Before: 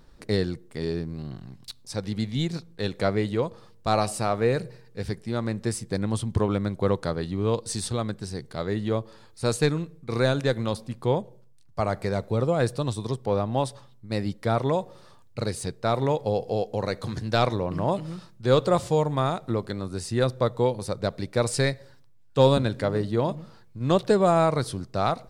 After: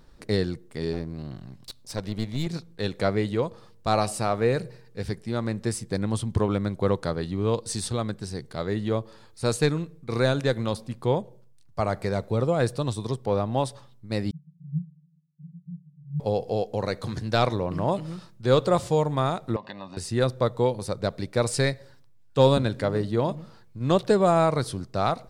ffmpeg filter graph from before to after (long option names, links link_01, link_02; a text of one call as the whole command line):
ffmpeg -i in.wav -filter_complex "[0:a]asettb=1/sr,asplit=3[link_01][link_02][link_03];[link_01]atrim=end=0.934[link_04];[link_02]atrim=start=0.93:end=2.47,asetpts=PTS-STARTPTS,afade=type=in:duration=0.004:curve=qsin,afade=type=out:start_time=1.536:duration=0.004:curve=qsin,equalizer=frequency=600:width_type=o:width=0.2:gain=5.5,aeval=exprs='clip(val(0),-1,0.0141)':channel_layout=same[link_05];[link_03]atrim=start=2.466[link_06];[link_04][link_05]acrossfade=duration=0.004:curve1=hsin:curve2=qsin[link_07];[link_07][link_06]acrossfade=duration=0.004:curve1=qsin:curve2=hsin,asettb=1/sr,asplit=3[link_08][link_09][link_10];[link_08]atrim=end=14.314[link_11];[link_09]atrim=start=14.31:end=16.2,asetpts=PTS-STARTPTS,afade=type=in:duration=0.004:curve=qsin,afade=type=out:start_time=1.886:duration=0.004:curve=qsin,asuperpass=centerf=160:order=12:qfactor=4.7,acontrast=20[link_12];[link_10]atrim=start=16.196[link_13];[link_11][link_12]acrossfade=duration=0.004:curve1=hsin:curve2=qsin[link_14];[link_14][link_13]acrossfade=duration=0.004:curve1=qsin:curve2=hsin,asettb=1/sr,asplit=3[link_15][link_16][link_17];[link_15]atrim=end=19.564[link_18];[link_16]atrim=start=19.56:end=19.97,asetpts=PTS-STARTPTS,afade=type=in:duration=0.004:curve=qsin,afade=type=out:start_time=0.406:duration=0.004:curve=qsin,acompressor=threshold=-30dB:ratio=10:attack=3.2:release=140:knee=1:detection=peak,highpass=280,equalizer=frequency=340:width_type=q:width=4:gain=-7,equalizer=frequency=540:width_type=q:width=4:gain=9,equalizer=frequency=980:width_type=q:width=4:gain=4,equalizer=frequency=2600:width_type=q:width=4:gain=8,lowpass=frequency=4800:width=0.5412,lowpass=frequency=4800:width=1.3066,aecho=1:1:1.1:0.83,atrim=end_sample=18081[link_19];[link_17]atrim=start=19.966[link_20];[link_18][link_19]acrossfade=duration=0.004:curve1=hsin:curve2=qsin[link_21];[link_21][link_20]acrossfade=duration=0.004:curve1=qsin:curve2=hsin" out.wav